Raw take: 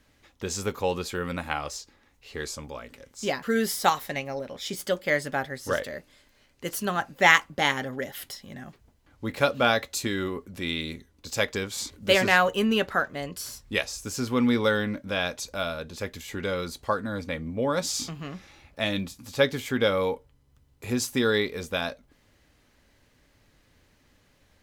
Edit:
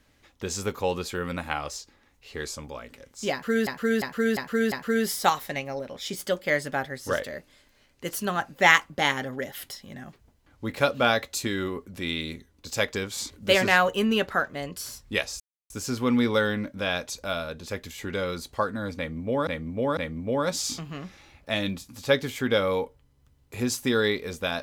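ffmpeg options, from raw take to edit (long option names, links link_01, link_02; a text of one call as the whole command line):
ffmpeg -i in.wav -filter_complex "[0:a]asplit=8[link_01][link_02][link_03][link_04][link_05][link_06][link_07][link_08];[link_01]atrim=end=3.672[link_09];[link_02]atrim=start=3.318:end=3.672[link_10];[link_03]atrim=start=3.318:end=3.672[link_11];[link_04]atrim=start=3.318:end=3.672[link_12];[link_05]atrim=start=3.318:end=14,asetpts=PTS-STARTPTS,afade=type=out:start_time=10.678:duration=0.004:curve=hsin,apad=pad_dur=0.3[link_13];[link_06]atrim=start=14:end=17.772,asetpts=PTS-STARTPTS,afade=type=in:duration=0.004:curve=hsin[link_14];[link_07]atrim=start=17.268:end=17.772[link_15];[link_08]atrim=start=17.268[link_16];[link_09][link_10]acrossfade=duration=0.004:curve1=hsin:curve2=hsin[link_17];[link_17][link_11]acrossfade=duration=0.004:curve1=hsin:curve2=hsin[link_18];[link_18][link_12]acrossfade=duration=0.004:curve1=hsin:curve2=hsin[link_19];[link_13][link_14]concat=n=2:v=0:a=1[link_20];[link_19][link_20]acrossfade=duration=0.004:curve1=hsin:curve2=hsin[link_21];[link_21][link_15]acrossfade=duration=0.004:curve1=hsin:curve2=hsin[link_22];[link_22][link_16]acrossfade=duration=0.004:curve1=hsin:curve2=hsin" out.wav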